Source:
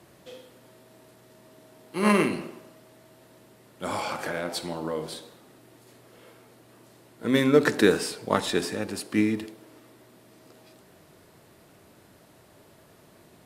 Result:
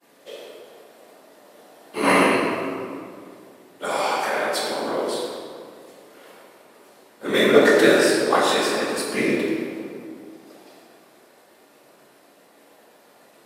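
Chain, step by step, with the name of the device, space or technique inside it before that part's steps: expander -50 dBFS; whispering ghost (whisperiser; HPF 360 Hz 12 dB/oct; reverb RT60 2.1 s, pre-delay 3 ms, DRR -4.5 dB); gain +3 dB

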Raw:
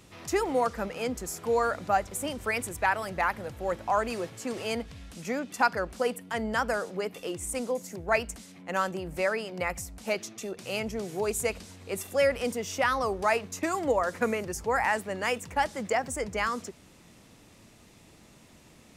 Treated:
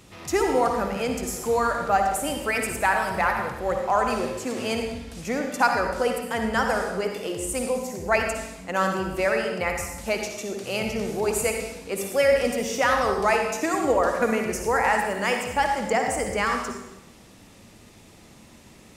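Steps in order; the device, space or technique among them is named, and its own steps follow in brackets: bathroom (reverb RT60 0.90 s, pre-delay 50 ms, DRR 3 dB); gain +3.5 dB

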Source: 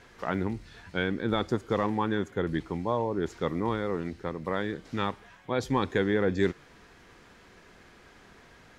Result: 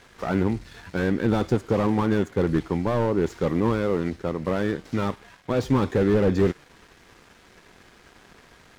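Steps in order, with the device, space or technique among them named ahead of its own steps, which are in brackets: early transistor amplifier (crossover distortion -57 dBFS; slew limiter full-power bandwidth 24 Hz); gain +8 dB

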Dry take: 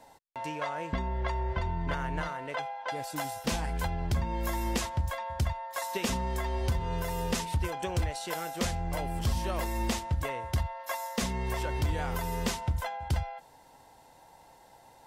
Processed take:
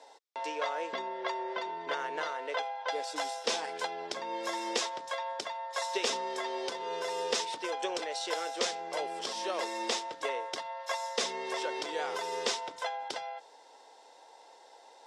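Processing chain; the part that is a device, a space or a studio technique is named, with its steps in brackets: phone speaker on a table (speaker cabinet 360–8400 Hz, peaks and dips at 450 Hz +6 dB, 3600 Hz +6 dB, 5300 Hz +6 dB)

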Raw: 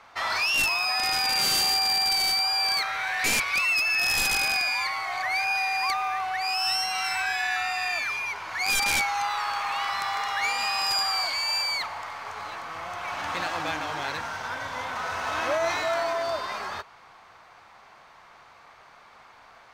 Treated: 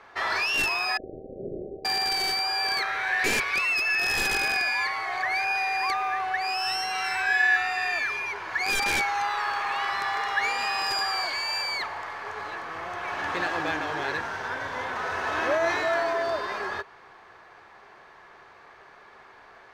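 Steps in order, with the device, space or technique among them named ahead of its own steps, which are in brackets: 0.97–1.85 steep low-pass 640 Hz 96 dB/oct; inside a helmet (high shelf 5200 Hz -8 dB; small resonant body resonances 390/1700 Hz, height 11 dB, ringing for 30 ms)

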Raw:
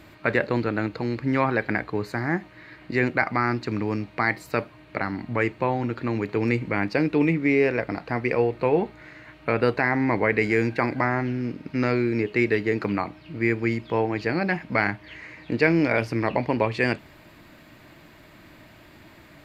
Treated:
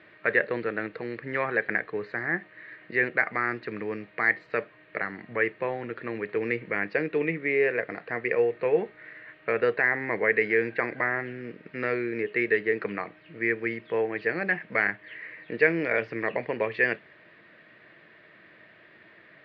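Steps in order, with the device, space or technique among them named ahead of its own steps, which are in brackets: kitchen radio (speaker cabinet 200–3500 Hz, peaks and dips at 270 Hz -10 dB, 460 Hz +6 dB, 880 Hz -7 dB, 1800 Hz +10 dB); gain -5 dB

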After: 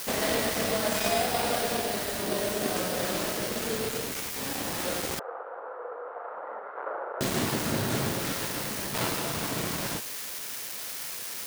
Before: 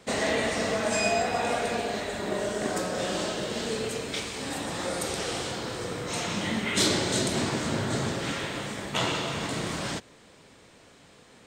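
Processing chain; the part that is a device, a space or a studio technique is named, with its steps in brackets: budget class-D amplifier (switching dead time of 0.21 ms; switching spikes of -19 dBFS); 5.19–7.21 elliptic band-pass 480–1400 Hz, stop band 70 dB

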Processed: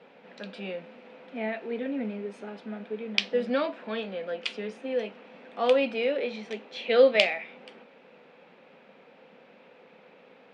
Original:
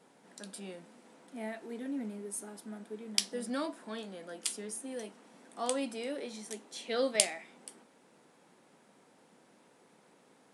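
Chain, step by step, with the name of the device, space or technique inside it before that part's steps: guitar cabinet (speaker cabinet 110–3700 Hz, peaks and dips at 130 Hz -7 dB, 320 Hz -8 dB, 510 Hz +7 dB, 1000 Hz -3 dB, 2500 Hz +8 dB); gain +8 dB

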